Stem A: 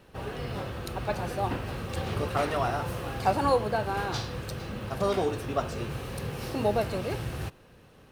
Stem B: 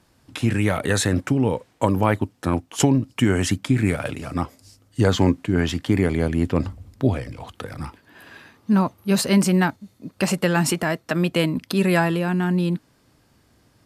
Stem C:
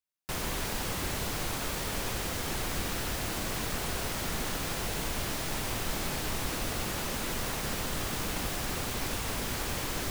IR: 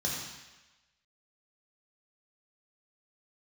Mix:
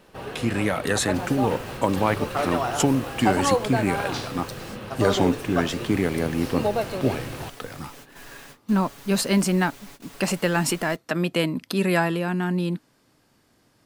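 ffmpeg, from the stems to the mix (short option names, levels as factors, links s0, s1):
-filter_complex "[0:a]volume=1.33[s0];[1:a]volume=0.841,asplit=2[s1][s2];[2:a]aecho=1:1:7.1:0.92,adelay=850,volume=0.2[s3];[s2]apad=whole_len=483354[s4];[s3][s4]sidechaingate=range=0.0224:threshold=0.00316:ratio=16:detection=peak[s5];[s0][s1][s5]amix=inputs=3:normalize=0,equalizer=f=66:t=o:w=1.7:g=-10.5"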